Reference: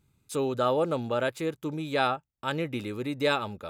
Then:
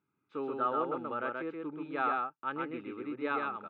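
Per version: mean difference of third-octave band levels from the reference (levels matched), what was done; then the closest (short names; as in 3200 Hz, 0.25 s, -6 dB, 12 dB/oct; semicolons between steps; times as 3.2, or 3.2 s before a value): 9.0 dB: wow and flutter 22 cents; speaker cabinet 270–2400 Hz, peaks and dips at 300 Hz +4 dB, 580 Hz -8 dB, 1300 Hz +8 dB, 1900 Hz -4 dB; echo 0.129 s -3 dB; gain -7.5 dB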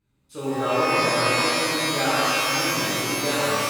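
15.0 dB: high shelf 5300 Hz -8.5 dB; notches 50/100/150/200/250/300/350/400/450 Hz; shimmer reverb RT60 2.8 s, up +12 st, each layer -2 dB, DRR -11.5 dB; gain -8 dB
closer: first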